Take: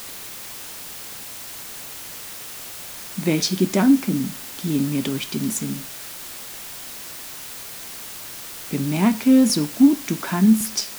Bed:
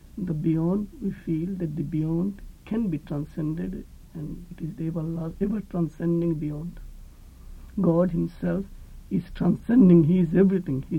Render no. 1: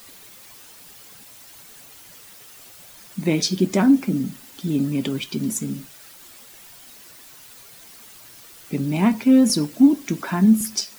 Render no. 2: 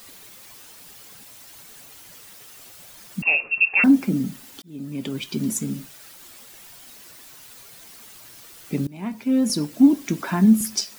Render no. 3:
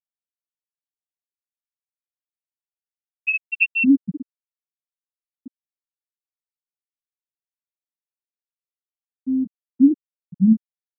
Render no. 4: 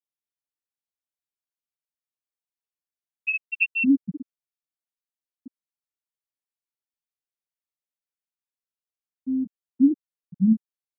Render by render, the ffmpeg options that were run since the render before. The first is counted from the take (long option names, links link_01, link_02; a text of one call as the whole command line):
ffmpeg -i in.wav -af "afftdn=noise_reduction=11:noise_floor=-36" out.wav
ffmpeg -i in.wav -filter_complex "[0:a]asettb=1/sr,asplit=3[link_01][link_02][link_03];[link_01]atrim=end=3.224[link_04];[link_02]atrim=start=3.22:end=3.84,asetpts=PTS-STARTPTS,afade=type=in:duration=0.004:curve=qsin,afade=type=out:start_time=0.616:duration=0.004:curve=qsin,lowpass=frequency=2500:width_type=q:width=0.5098,lowpass=frequency=2500:width_type=q:width=0.6013,lowpass=frequency=2500:width_type=q:width=0.9,lowpass=frequency=2500:width_type=q:width=2.563,afreqshift=-2900[link_05];[link_03]atrim=start=3.836[link_06];[link_04][link_05]acrossfade=duration=0.004:curve1=hsin:curve2=qsin[link_07];[link_07][link_06]acrossfade=duration=0.004:curve1=qsin:curve2=hsin,asplit=3[link_08][link_09][link_10];[link_08]atrim=end=4.62,asetpts=PTS-STARTPTS,afade=type=out:start_time=4.616:duration=0.004:curve=hsin[link_11];[link_09]atrim=start=4.62:end=8.87,asetpts=PTS-STARTPTS,afade=type=in:duration=0.77,afade=type=out:start_time=4.246:duration=0.004:curve=hsin:silence=0.0749894[link_12];[link_10]atrim=start=8.87,asetpts=PTS-STARTPTS,afade=type=in:duration=1.03:silence=0.0749894[link_13];[link_11][link_12][link_13]concat=n=3:v=0:a=1" out.wav
ffmpeg -i in.wav -af "afftfilt=real='re*gte(hypot(re,im),1.12)':imag='im*gte(hypot(re,im),1.12)':win_size=1024:overlap=0.75,highshelf=frequency=4800:gain=10.5" out.wav
ffmpeg -i in.wav -af "volume=-4dB" out.wav